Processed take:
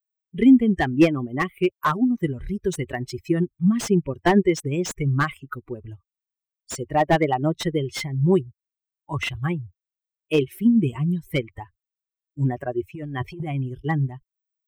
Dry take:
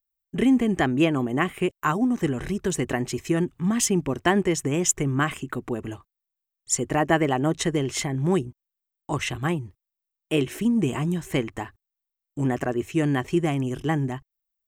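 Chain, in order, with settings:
spectral dynamics exaggerated over time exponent 2
0:12.95–0:13.55: compressor whose output falls as the input rises −38 dBFS, ratio −1
slew-rate limiting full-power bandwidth 85 Hz
level +7.5 dB

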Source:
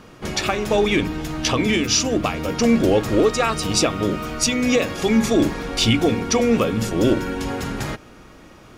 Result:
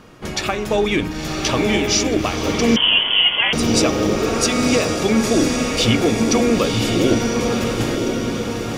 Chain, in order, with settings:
on a send: feedback delay with all-pass diffusion 1,007 ms, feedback 53%, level −3 dB
0:02.76–0:03.53: on the sum: voice inversion scrambler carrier 3,300 Hz

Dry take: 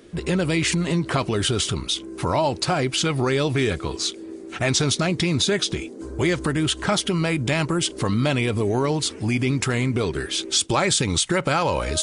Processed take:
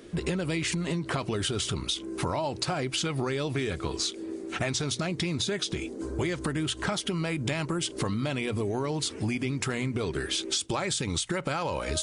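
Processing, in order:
mains-hum notches 60/120 Hz
downward compressor 10 to 1, threshold −26 dBFS, peak gain reduction 10.5 dB

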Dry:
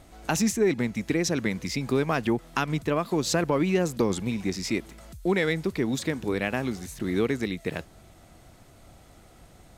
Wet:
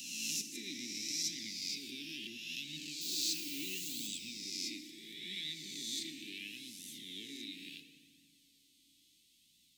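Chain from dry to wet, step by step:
peak hold with a rise ahead of every peak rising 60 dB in 1.68 s
0:03.01–0:04.07: bit-depth reduction 6 bits, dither triangular
RIAA equalisation recording
0:00.41–0:00.98: compressor whose output falls as the input rises −22 dBFS, ratio −0.5
inverse Chebyshev band-stop filter 540–1,400 Hz, stop band 60 dB
three-way crossover with the lows and the highs turned down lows −21 dB, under 260 Hz, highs −20 dB, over 3,700 Hz
feedback delay network reverb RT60 2.4 s, low-frequency decay 1.05×, high-frequency decay 0.6×, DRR 7 dB
flanger 0.73 Hz, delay 1 ms, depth 2.3 ms, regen +43%
level −2.5 dB

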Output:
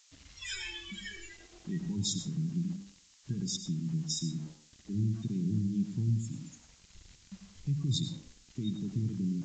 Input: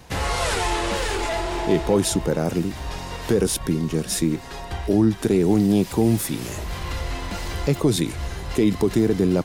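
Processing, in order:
noise reduction from a noise print of the clip's start 26 dB
Chebyshev band-stop filter 130–2,700 Hz, order 2
hum removal 75.1 Hz, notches 4
in parallel at 0 dB: downward compressor, threshold −31 dBFS, peak gain reduction 10.5 dB
on the sum: centre clipping without the shift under −45 dBFS
background noise violet −42 dBFS
on a send at −8.5 dB: convolution reverb RT60 0.40 s, pre-delay 88 ms
on the sum: downsampling to 16,000 Hz
level −7.5 dB

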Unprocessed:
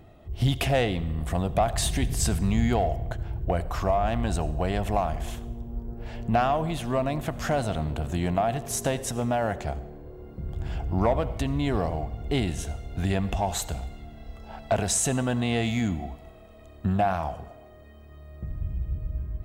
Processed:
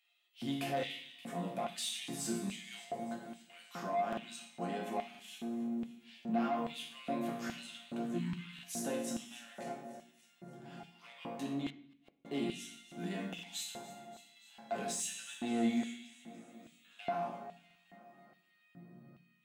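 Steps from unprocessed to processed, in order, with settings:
Chebyshev high-pass filter 170 Hz, order 3
resonators tuned to a chord A#2 minor, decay 0.59 s
in parallel at −3 dB: brickwall limiter −37.5 dBFS, peak gain reduction 11.5 dB
on the sum: soft clipping −31.5 dBFS, distortion −18 dB
delay that swaps between a low-pass and a high-pass 144 ms, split 860 Hz, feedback 79%, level −13.5 dB
auto-filter high-pass square 1.2 Hz 220–2,900 Hz
0:08.18–0:08.59: time-frequency box erased 320–860 Hz
0:11.70–0:12.25: gate with flip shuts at −48 dBFS, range −41 dB
on a send at −9 dB: convolution reverb RT60 0.65 s, pre-delay 3 ms
on the sum: buffer that repeats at 0:04.08/0:05.10/0:08.54/0:13.34/0:17.66, samples 2,048, times 1
level +2 dB

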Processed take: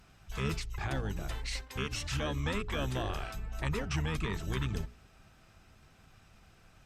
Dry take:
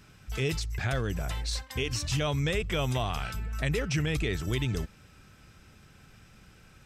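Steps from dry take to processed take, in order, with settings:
pitch-shifted copies added −12 semitones −1 dB
mains-hum notches 60/120/180/240/300/360/420 Hz
level −6.5 dB
Opus 64 kbit/s 48,000 Hz

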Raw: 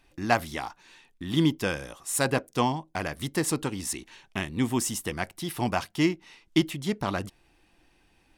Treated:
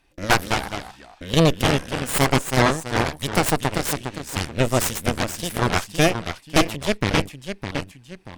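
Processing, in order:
delay with pitch and tempo change per echo 191 ms, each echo −1 semitone, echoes 2, each echo −6 dB
harmonic generator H 8 −6 dB, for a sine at −6.5 dBFS

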